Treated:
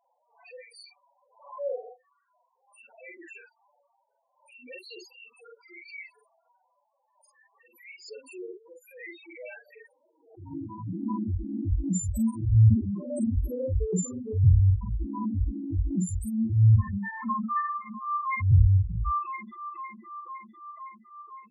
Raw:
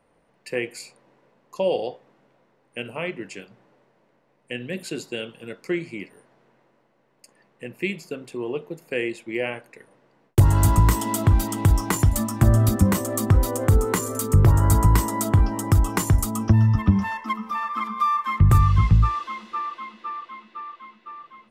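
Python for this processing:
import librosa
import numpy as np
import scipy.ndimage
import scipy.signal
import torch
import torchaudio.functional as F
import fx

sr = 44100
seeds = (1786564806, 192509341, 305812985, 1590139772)

p1 = fx.dereverb_blind(x, sr, rt60_s=0.76)
p2 = fx.dynamic_eq(p1, sr, hz=820.0, q=1.1, threshold_db=-42.0, ratio=4.0, max_db=-7)
p3 = fx.filter_sweep_highpass(p2, sr, from_hz=790.0, to_hz=67.0, start_s=9.43, end_s=11.69, q=1.2)
p4 = 10.0 ** (-14.5 / 20.0) * np.tanh(p3 / 10.0 ** (-14.5 / 20.0))
p5 = p3 + F.gain(torch.from_numpy(p4), -6.0).numpy()
p6 = fx.auto_swell(p5, sr, attack_ms=239.0)
p7 = fx.spec_topn(p6, sr, count=2)
p8 = fx.doubler(p7, sr, ms=44.0, db=-2.0)
y = fx.pre_swell(p8, sr, db_per_s=110.0)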